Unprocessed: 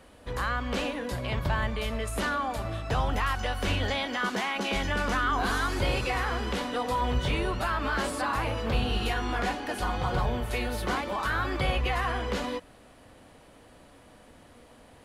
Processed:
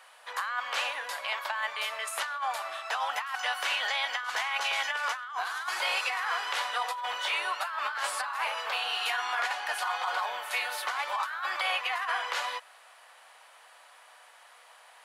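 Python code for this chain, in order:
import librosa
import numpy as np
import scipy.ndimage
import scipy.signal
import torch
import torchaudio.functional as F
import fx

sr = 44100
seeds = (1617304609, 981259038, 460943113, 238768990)

y = scipy.signal.sosfilt(scipy.signal.butter(4, 790.0, 'highpass', fs=sr, output='sos'), x)
y = fx.peak_eq(y, sr, hz=1500.0, db=2.5, octaves=1.9)
y = fx.over_compress(y, sr, threshold_db=-31.0, ratio=-0.5)
y = y * librosa.db_to_amplitude(1.0)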